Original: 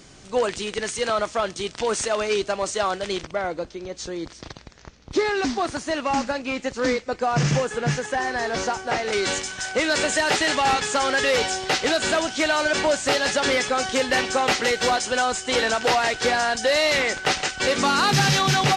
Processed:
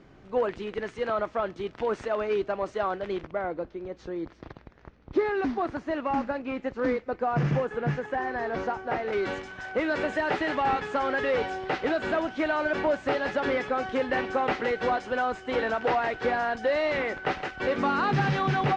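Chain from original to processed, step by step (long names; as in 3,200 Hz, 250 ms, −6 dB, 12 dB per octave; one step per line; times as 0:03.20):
low-pass filter 1,800 Hz 12 dB per octave
parametric band 330 Hz +2.5 dB 0.76 octaves
level −4.5 dB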